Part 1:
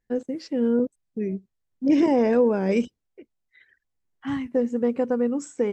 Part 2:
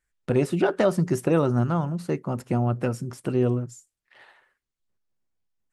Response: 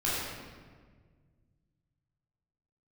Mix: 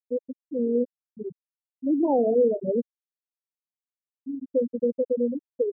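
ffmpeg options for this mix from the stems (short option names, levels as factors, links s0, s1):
-filter_complex "[0:a]highshelf=f=2500:g=3,bandreject=f=50:t=h:w=6,bandreject=f=100:t=h:w=6,bandreject=f=150:t=h:w=6,bandreject=f=200:t=h:w=6,volume=1.33,asplit=2[s0][s1];[s1]volume=0.0708[s2];[1:a]asoftclip=type=tanh:threshold=0.0531,volume=0.422,asplit=2[s3][s4];[s4]volume=0.355[s5];[2:a]atrim=start_sample=2205[s6];[s2][s5]amix=inputs=2:normalize=0[s7];[s7][s6]afir=irnorm=-1:irlink=0[s8];[s0][s3][s8]amix=inputs=3:normalize=0,acrossover=split=460|3000[s9][s10][s11];[s9]acompressor=threshold=0.01:ratio=1.5[s12];[s12][s10][s11]amix=inputs=3:normalize=0,afftfilt=real='re*gte(hypot(re,im),0.398)':imag='im*gte(hypot(re,im),0.398)':win_size=1024:overlap=0.75"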